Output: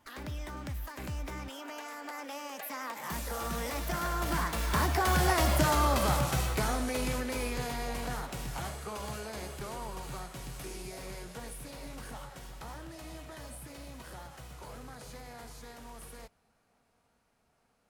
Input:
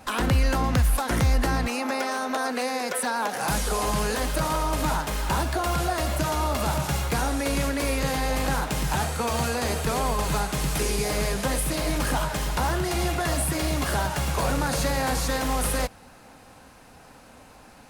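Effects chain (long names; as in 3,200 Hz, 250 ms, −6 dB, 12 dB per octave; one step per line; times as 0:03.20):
source passing by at 0:05.50, 38 m/s, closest 27 metres
formants moved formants +2 semitones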